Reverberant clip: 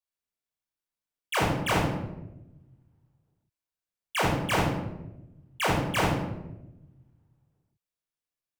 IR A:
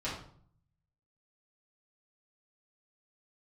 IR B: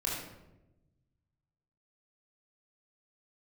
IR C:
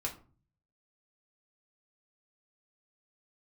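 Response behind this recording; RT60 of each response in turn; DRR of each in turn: B; 0.55, 1.0, 0.40 s; -9.5, -4.5, -1.0 dB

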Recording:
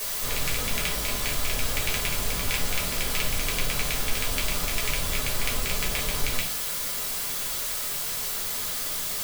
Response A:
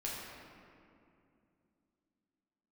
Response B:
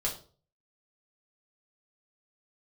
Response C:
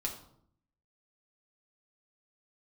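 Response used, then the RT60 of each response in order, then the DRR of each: B; 2.6, 0.40, 0.65 s; -5.5, -3.5, -1.0 dB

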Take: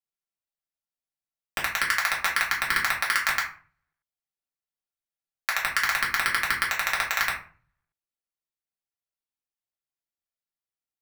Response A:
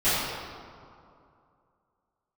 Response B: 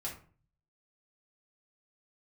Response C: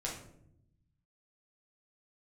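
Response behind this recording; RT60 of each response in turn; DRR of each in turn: B; 2.5, 0.45, 0.75 s; -17.0, -4.5, -4.0 dB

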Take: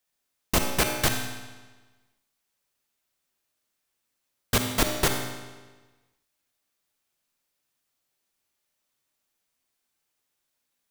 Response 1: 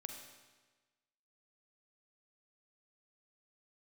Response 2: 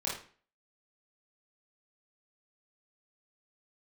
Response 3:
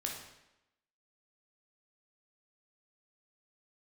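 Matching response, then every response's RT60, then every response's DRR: 1; 1.3, 0.45, 0.90 s; 3.5, -6.5, -0.5 dB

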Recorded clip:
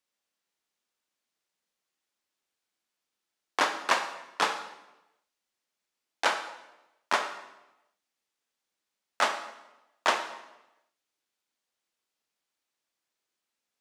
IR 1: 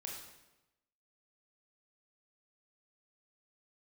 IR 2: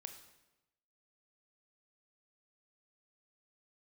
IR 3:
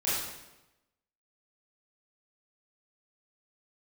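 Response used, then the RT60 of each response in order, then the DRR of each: 2; 1.0, 1.0, 1.0 s; -1.5, 6.5, -10.5 dB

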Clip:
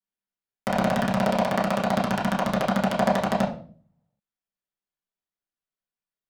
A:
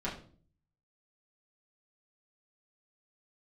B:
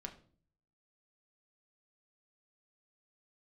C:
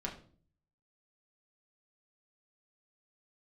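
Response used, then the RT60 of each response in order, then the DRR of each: A; 0.45, 0.45, 0.45 s; -8.0, 2.5, -2.5 dB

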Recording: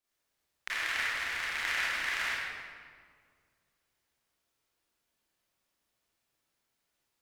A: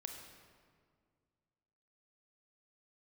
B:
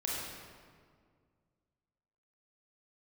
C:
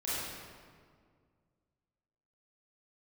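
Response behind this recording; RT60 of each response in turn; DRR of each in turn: C; 2.0, 2.0, 2.0 s; 3.0, -5.0, -11.0 dB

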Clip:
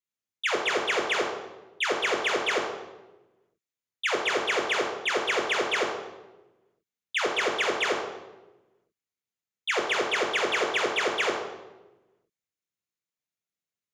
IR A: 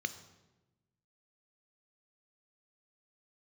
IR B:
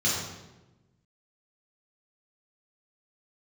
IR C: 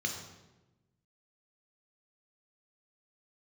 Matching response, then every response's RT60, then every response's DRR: C; 1.1, 1.1, 1.1 s; 11.0, -7.5, 2.0 dB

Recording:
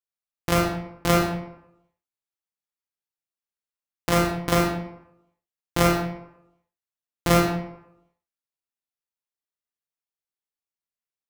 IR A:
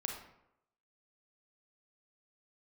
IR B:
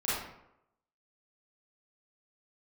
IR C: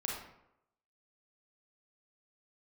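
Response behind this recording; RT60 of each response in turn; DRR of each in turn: C; 0.80, 0.80, 0.80 s; 1.5, -11.0, -2.5 dB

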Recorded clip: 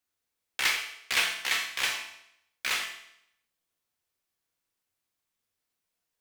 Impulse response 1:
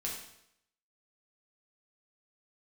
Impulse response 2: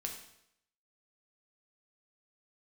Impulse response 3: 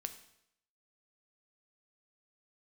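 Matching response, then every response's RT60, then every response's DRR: 2; 0.75, 0.75, 0.75 s; -4.0, 1.0, 8.0 dB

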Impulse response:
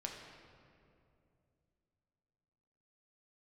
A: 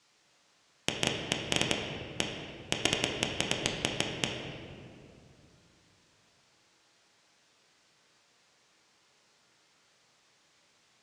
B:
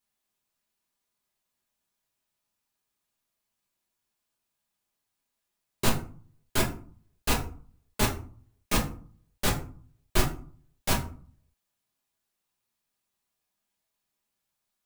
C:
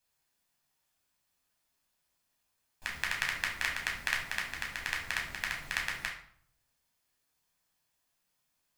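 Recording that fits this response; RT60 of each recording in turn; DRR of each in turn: A; 2.6, 0.45, 0.60 s; 0.0, -2.5, -1.5 dB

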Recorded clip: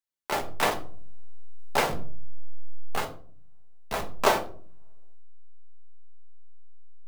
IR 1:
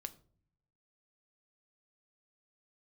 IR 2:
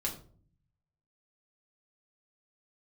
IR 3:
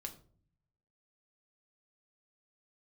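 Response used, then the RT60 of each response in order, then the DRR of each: 3; not exponential, 0.50 s, 0.50 s; 9.5, -2.5, 3.5 dB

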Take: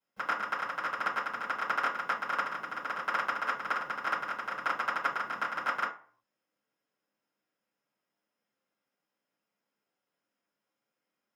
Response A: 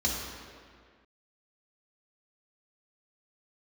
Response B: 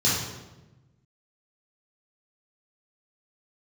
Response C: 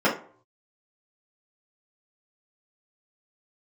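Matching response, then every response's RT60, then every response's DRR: C; 1.9 s, 1.1 s, not exponential; -4.0, -8.0, -8.0 dB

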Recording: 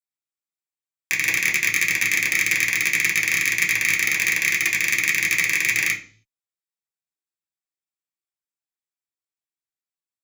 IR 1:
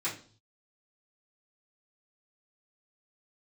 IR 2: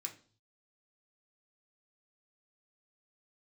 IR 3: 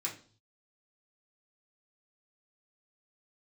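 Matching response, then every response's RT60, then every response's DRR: 3; 0.45, 0.45, 0.45 s; -12.5, 0.5, -5.0 dB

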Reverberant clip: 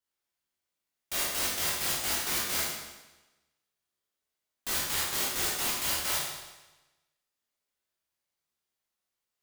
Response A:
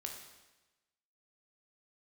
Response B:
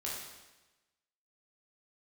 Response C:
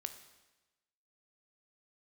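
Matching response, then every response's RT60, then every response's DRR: B; 1.1, 1.1, 1.1 s; 1.5, -5.5, 8.5 dB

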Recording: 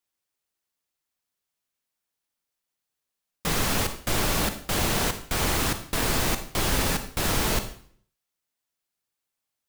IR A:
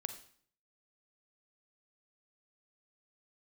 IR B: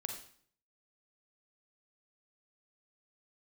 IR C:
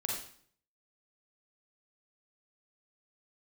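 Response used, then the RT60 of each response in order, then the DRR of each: A; 0.55, 0.55, 0.55 s; 8.5, 3.0, -2.0 dB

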